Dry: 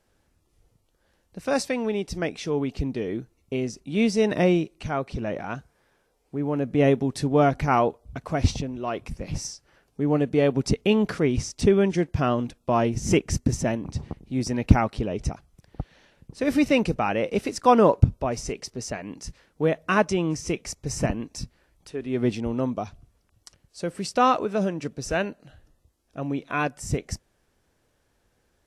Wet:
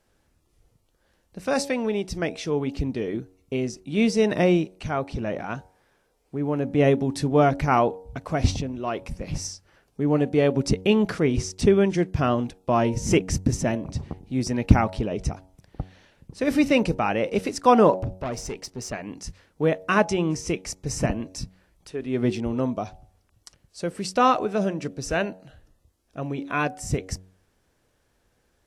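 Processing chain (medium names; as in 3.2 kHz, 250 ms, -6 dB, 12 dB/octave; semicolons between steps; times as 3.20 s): 18.02–18.93 s: valve stage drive 25 dB, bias 0.35; de-hum 93.28 Hz, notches 10; trim +1 dB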